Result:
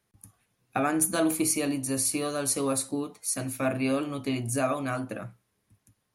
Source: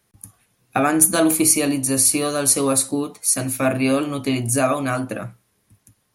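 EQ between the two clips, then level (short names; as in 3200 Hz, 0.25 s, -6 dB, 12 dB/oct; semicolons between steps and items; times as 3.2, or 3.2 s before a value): high shelf 5900 Hz -4.5 dB; -8.0 dB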